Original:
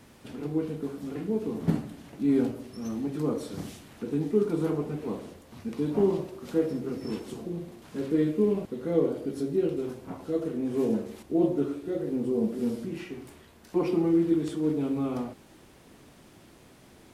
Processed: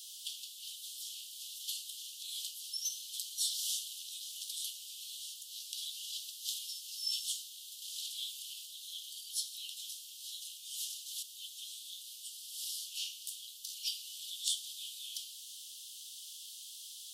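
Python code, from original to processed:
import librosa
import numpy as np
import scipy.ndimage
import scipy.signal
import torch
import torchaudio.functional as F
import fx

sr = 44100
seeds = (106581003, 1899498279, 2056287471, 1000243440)

y = scipy.signal.sosfilt(scipy.signal.butter(16, 3000.0, 'highpass', fs=sr, output='sos'), x)
y = F.gain(torch.from_numpy(y), 15.0).numpy()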